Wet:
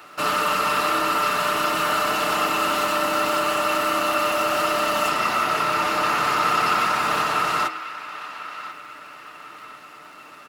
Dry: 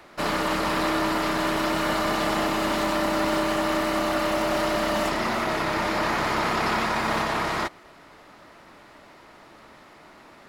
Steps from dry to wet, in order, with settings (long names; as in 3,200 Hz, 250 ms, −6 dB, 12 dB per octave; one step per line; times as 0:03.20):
high-shelf EQ 7,000 Hz +9.5 dB
on a send: feedback echo with a band-pass in the loop 1,040 ms, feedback 42%, band-pass 2,000 Hz, level −13 dB
on the sum: surface crackle 130 per second −45 dBFS
high-pass filter 50 Hz
comb filter 6.7 ms, depth 38%
hum removal 79.57 Hz, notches 31
in parallel at −5.5 dB: soft clipping −26.5 dBFS, distortion −9 dB
on the sum: low-shelf EQ 170 Hz −7 dB
hollow resonant body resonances 1,300/2,700 Hz, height 13 dB, ringing for 20 ms
level −3 dB